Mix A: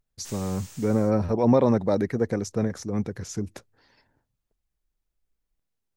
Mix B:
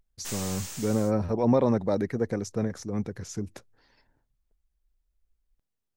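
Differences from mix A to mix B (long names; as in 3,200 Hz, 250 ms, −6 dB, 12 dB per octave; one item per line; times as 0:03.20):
speech −3.0 dB
background +7.5 dB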